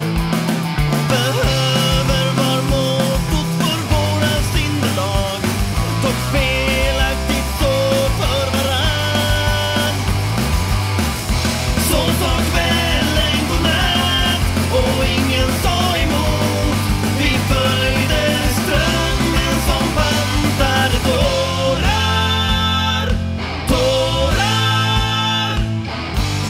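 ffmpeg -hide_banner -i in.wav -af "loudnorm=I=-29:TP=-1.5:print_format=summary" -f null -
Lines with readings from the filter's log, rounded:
Input Integrated:    -16.5 LUFS
Input True Peak:      -4.4 dBTP
Input LRA:             1.5 LU
Input Threshold:     -26.5 LUFS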